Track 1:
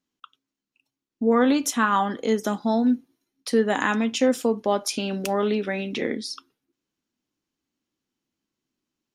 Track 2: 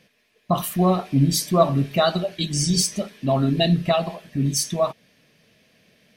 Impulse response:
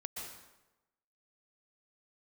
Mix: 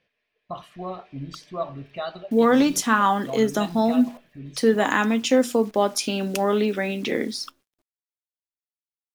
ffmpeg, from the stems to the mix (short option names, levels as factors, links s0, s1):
-filter_complex "[0:a]bandreject=f=60:t=h:w=6,bandreject=f=120:t=h:w=6,bandreject=f=180:t=h:w=6,bandreject=f=240:t=h:w=6,acrusher=bits=9:dc=4:mix=0:aa=0.000001,adelay=1100,volume=1.26[s0];[1:a]lowpass=3300,equalizer=f=190:t=o:w=1.4:g=-9.5,volume=0.299[s1];[s0][s1]amix=inputs=2:normalize=0"